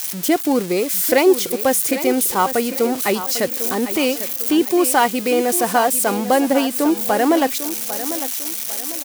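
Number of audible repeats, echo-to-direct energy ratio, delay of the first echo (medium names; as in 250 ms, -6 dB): 3, -11.5 dB, 799 ms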